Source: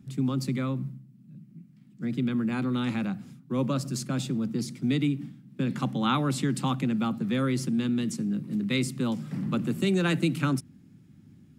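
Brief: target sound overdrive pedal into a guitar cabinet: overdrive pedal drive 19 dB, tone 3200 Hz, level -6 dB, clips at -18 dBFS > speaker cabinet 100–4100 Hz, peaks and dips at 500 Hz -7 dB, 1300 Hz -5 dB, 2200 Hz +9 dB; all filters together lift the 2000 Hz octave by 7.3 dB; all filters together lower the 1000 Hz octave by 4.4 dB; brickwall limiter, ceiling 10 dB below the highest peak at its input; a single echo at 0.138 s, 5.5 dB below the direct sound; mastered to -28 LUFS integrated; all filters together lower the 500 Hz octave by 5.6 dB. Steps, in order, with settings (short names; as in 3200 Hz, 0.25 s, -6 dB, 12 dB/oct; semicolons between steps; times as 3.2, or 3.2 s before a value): bell 500 Hz -4.5 dB; bell 1000 Hz -3.5 dB; bell 2000 Hz +5 dB; limiter -22 dBFS; echo 0.138 s -5.5 dB; overdrive pedal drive 19 dB, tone 3200 Hz, level -6 dB, clips at -18 dBFS; speaker cabinet 100–4100 Hz, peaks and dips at 500 Hz -7 dB, 1300 Hz -5 dB, 2200 Hz +9 dB; gain -0.5 dB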